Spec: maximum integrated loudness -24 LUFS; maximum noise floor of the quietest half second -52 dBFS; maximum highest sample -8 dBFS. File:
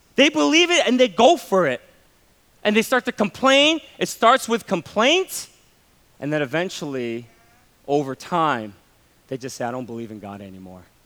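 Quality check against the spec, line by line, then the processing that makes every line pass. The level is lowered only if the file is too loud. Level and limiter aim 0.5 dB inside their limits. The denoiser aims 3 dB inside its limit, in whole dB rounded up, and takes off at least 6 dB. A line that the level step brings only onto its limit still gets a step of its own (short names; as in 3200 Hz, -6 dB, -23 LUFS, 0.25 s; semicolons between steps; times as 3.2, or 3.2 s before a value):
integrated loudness -19.5 LUFS: fail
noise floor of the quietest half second -57 dBFS: OK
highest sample -2.5 dBFS: fail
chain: gain -5 dB; limiter -8.5 dBFS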